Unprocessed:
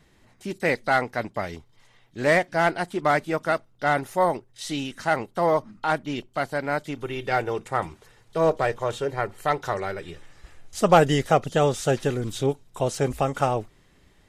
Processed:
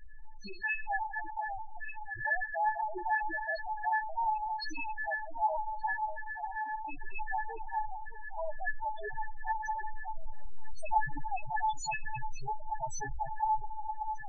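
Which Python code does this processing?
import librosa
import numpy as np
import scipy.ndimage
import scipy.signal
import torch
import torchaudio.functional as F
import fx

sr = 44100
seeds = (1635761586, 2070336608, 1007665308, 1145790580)

y = fx.delta_hold(x, sr, step_db=-32.0, at=(9.91, 10.99))
y = fx.high_shelf(y, sr, hz=8800.0, db=-11.5)
y = fx.hum_notches(y, sr, base_hz=50, count=8)
y = y + 0.39 * np.pad(y, (int(3.0 * sr / 1000.0), 0))[:len(y)]
y = fx.fixed_phaser(y, sr, hz=1000.0, stages=6, at=(4.83, 5.34))
y = fx.level_steps(y, sr, step_db=17, at=(5.93, 6.83))
y = fx.comb_fb(y, sr, f0_hz=870.0, decay_s=0.17, harmonics='all', damping=0.0, mix_pct=100)
y = fx.echo_alternate(y, sr, ms=586, hz=1000.0, feedback_pct=75, wet_db=-11)
y = fx.rev_schroeder(y, sr, rt60_s=2.0, comb_ms=32, drr_db=16.0)
y = fx.spec_topn(y, sr, count=4)
y = fx.env_flatten(y, sr, amount_pct=50)
y = F.gain(torch.from_numpy(y), 6.5).numpy()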